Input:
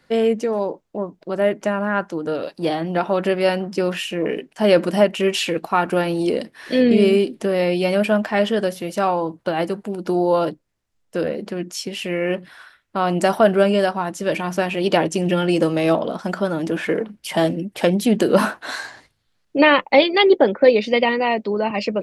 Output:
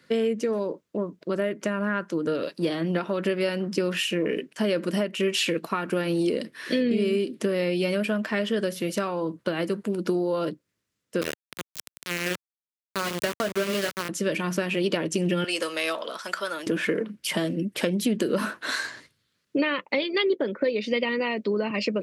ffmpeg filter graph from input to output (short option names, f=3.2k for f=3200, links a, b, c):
-filter_complex "[0:a]asettb=1/sr,asplit=3[a][b][c];[a]atrim=end=11.214[d];[b]atrim=start=11.21:end=14.09,asetpts=PTS-STARTPTS,afade=t=in:d=0.004:c=qsin,afade=t=out:st=2.876:d=0.004:c=qsin,lowshelf=f=140:g=-11.5,bandreject=f=73.72:t=h:w=4,bandreject=f=147.44:t=h:w=4,bandreject=f=221.16:t=h:w=4,bandreject=f=294.88:t=h:w=4,bandreject=f=368.6:t=h:w=4,bandreject=f=442.32:t=h:w=4,bandreject=f=516.04:t=h:w=4,bandreject=f=589.76:t=h:w=4,bandreject=f=663.48:t=h:w=4,bandreject=f=737.2:t=h:w=4,bandreject=f=810.92:t=h:w=4,bandreject=f=884.64:t=h:w=4,bandreject=f=958.36:t=h:w=4,bandreject=f=1.03208k:t=h:w=4,bandreject=f=1.1058k:t=h:w=4,bandreject=f=1.17952k:t=h:w=4,bandreject=f=1.25324k:t=h:w=4,bandreject=f=1.32696k:t=h:w=4,aeval=exprs='val(0)*gte(abs(val(0)),0.112)':c=same[e];[c]atrim=start=14.086[f];[d][e]acrossfade=d=0.004:c1=hsin:c2=qsin[g];[g][f]acrossfade=d=0.004:c1=qsin:c2=hsin,asettb=1/sr,asplit=3[h][i][j];[h]atrim=end=15.444[k];[i]atrim=start=15.44:end=16.67,asetpts=PTS-STARTPTS,afade=t=in:d=0.004:c=qsin,afade=t=out:st=1.226:d=0.004:c=qsin,highpass=800,equalizer=f=8.4k:w=0.34:g=3.5[l];[j]atrim=start=16.666[m];[k][l]acrossfade=d=0.004:c1=hsin:c2=qsin[n];[n][m]acrossfade=d=0.004:c1=qsin:c2=hsin,acompressor=threshold=-22dB:ratio=5,highpass=120,equalizer=f=780:w=2.9:g=-13.5,volume=1.5dB"